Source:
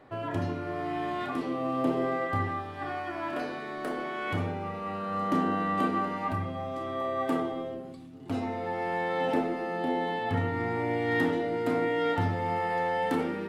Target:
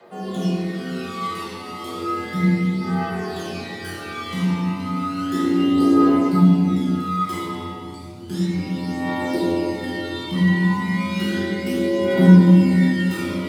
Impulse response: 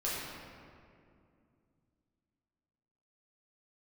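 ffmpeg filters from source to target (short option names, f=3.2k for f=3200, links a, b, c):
-filter_complex "[0:a]aphaser=in_gain=1:out_gain=1:delay=1.2:decay=0.75:speed=0.33:type=triangular,acrossover=split=250|1200|3600[a][b][c][d];[d]aeval=exprs='0.0355*sin(PI/2*4.47*val(0)/0.0355)':c=same[e];[a][b][c][e]amix=inputs=4:normalize=0,afreqshift=84,asubboost=boost=6:cutoff=200[f];[1:a]atrim=start_sample=2205[g];[f][g]afir=irnorm=-1:irlink=0,volume=-5.5dB"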